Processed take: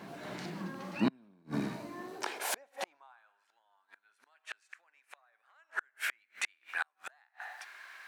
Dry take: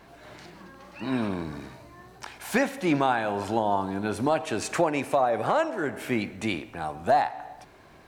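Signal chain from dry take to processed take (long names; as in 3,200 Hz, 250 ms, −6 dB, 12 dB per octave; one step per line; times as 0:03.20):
gate with flip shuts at −21 dBFS, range −40 dB
high-pass filter sweep 180 Hz → 1,600 Hz, 0:01.69–0:03.44
level +2.5 dB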